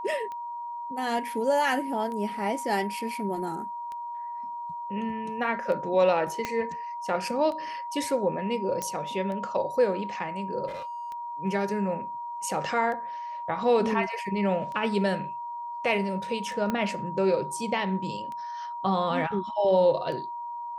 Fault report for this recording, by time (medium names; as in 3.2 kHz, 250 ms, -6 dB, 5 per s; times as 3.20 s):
tick 33 1/3 rpm -26 dBFS
whine 950 Hz -33 dBFS
6.45 s: pop -14 dBFS
8.82 s: pop -16 dBFS
10.67–11.11 s: clipped -33.5 dBFS
16.70 s: pop -15 dBFS